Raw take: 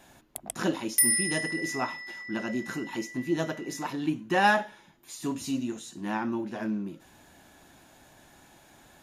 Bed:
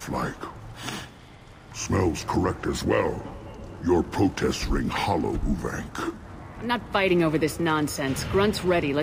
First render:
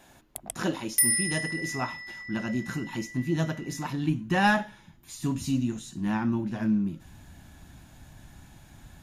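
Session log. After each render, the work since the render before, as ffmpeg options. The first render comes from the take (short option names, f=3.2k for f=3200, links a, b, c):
-af "asubboost=boost=8:cutoff=150"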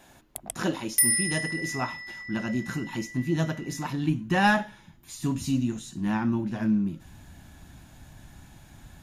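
-af "volume=1dB"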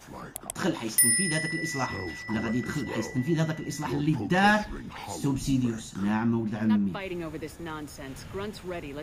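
-filter_complex "[1:a]volume=-13.5dB[a];[0:a][a]amix=inputs=2:normalize=0"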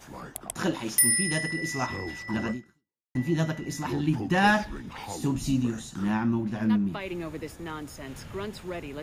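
-filter_complex "[0:a]asplit=2[a][b];[a]atrim=end=3.15,asetpts=PTS-STARTPTS,afade=t=out:st=2.51:d=0.64:c=exp[c];[b]atrim=start=3.15,asetpts=PTS-STARTPTS,afade=t=in:d=0.004:c=hsin[d];[c][d]concat=n=2:v=0:a=1"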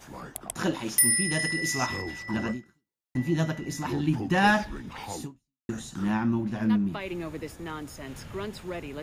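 -filter_complex "[0:a]asettb=1/sr,asplit=3[a][b][c];[a]atrim=end=1.394[d];[b]atrim=start=1.39:end=2.02,asetpts=PTS-STARTPTS,afade=t=in:d=0.004:c=qsin,afade=t=out:st=0.626:d=0.004:c=qsin,highshelf=f=2.7k:g=8[e];[c]atrim=start=2.016[f];[d][e]acrossfade=d=0.004:c1=hsin:c2=qsin[g];[g][f]acrossfade=d=0.004:c1=qsin:c2=hsin,asplit=2[h][i];[h]atrim=end=5.69,asetpts=PTS-STARTPTS,afade=t=out:st=5.21:d=0.48:c=exp[j];[i]atrim=start=5.69,asetpts=PTS-STARTPTS,afade=t=in:d=0.004:c=hsin[k];[j][k]concat=n=2:v=0:a=1"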